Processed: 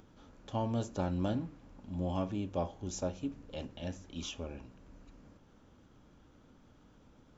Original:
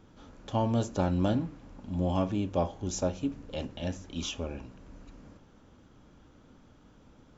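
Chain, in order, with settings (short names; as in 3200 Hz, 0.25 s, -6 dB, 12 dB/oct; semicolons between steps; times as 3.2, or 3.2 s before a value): upward compressor, threshold -49 dBFS; gain -6 dB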